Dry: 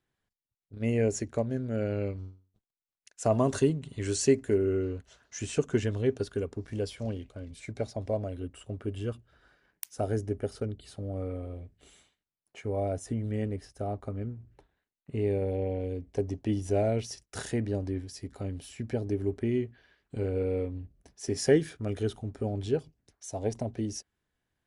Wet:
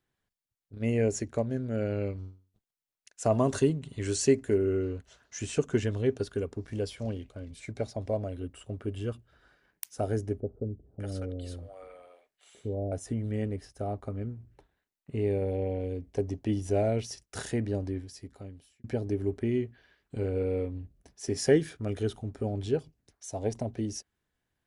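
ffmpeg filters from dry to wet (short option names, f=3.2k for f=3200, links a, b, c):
-filter_complex "[0:a]asettb=1/sr,asplit=3[a][b][c];[a]atrim=end=10.404[d];[b]atrim=start=10.4:end=12.92,asetpts=PTS-STARTPTS,afade=t=in:d=0.004:c=qsin,afade=t=out:st=2.516:d=0.004:c=qsin,acrossover=split=620[e][f];[f]adelay=600[g];[e][g]amix=inputs=2:normalize=0,atrim=end_sample=111132[h];[c]atrim=start=12.916[i];[d][h]acrossfade=d=0.004:c1=hsin:c2=qsin[j];[j][i]acrossfade=d=0.004:c1=qsin:c2=hsin,asplit=2[k][l];[k]atrim=end=18.84,asetpts=PTS-STARTPTS,afade=t=out:st=17.82:d=1.02[m];[l]atrim=start=18.84,asetpts=PTS-STARTPTS,afade=t=in:d=0.004:c=hsin[n];[m][n]concat=n=2:v=0:a=1"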